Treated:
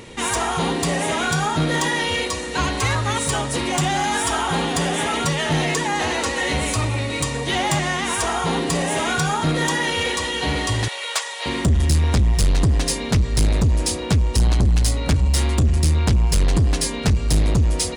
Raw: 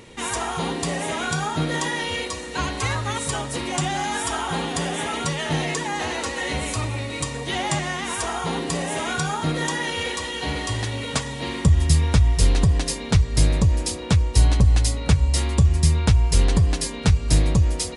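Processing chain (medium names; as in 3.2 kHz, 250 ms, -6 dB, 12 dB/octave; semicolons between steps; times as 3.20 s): 10.88–11.46 s: Bessel high-pass 850 Hz, order 8; saturation -18 dBFS, distortion -9 dB; trim +5.5 dB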